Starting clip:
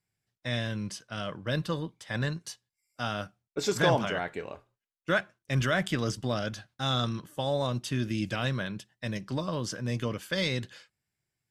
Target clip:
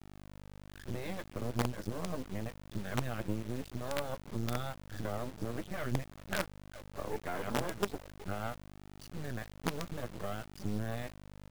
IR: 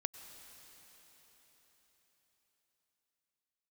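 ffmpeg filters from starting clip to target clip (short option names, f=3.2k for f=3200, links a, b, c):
-filter_complex "[0:a]areverse,asplit=2[a][b];[b]adelay=380,highpass=300,lowpass=3.4k,asoftclip=type=hard:threshold=-19.5dB,volume=-26dB[c];[a][c]amix=inputs=2:normalize=0,afftdn=nr=26:nf=-42,highpass=130,lowpass=2.7k,tiltshelf=f=930:g=6,aeval=exprs='0.316*(cos(1*acos(clip(val(0)/0.316,-1,1)))-cos(1*PI/2))+0.00891*(cos(7*acos(clip(val(0)/0.316,-1,1)))-cos(7*PI/2))':c=same,asplit=2[d][e];[e]asoftclip=type=tanh:threshold=-23dB,volume=-12dB[f];[d][f]amix=inputs=2:normalize=0,acompressor=threshold=-41dB:ratio=6,aeval=exprs='val(0)+0.00178*(sin(2*PI*50*n/s)+sin(2*PI*2*50*n/s)/2+sin(2*PI*3*50*n/s)/3+sin(2*PI*4*50*n/s)/4+sin(2*PI*5*50*n/s)/5)':c=same,flanger=delay=8.1:depth=3.3:regen=43:speed=0.67:shape=sinusoidal,acrusher=bits=7:dc=4:mix=0:aa=0.000001,volume=12dB"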